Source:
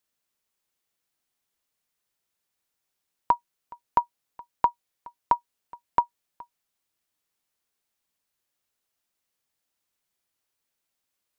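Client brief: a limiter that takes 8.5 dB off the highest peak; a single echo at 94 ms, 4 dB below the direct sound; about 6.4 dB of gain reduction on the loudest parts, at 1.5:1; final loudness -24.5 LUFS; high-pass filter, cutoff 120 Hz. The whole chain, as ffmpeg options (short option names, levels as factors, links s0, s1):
-af "highpass=120,acompressor=threshold=0.0178:ratio=1.5,alimiter=limit=0.0891:level=0:latency=1,aecho=1:1:94:0.631,volume=7.5"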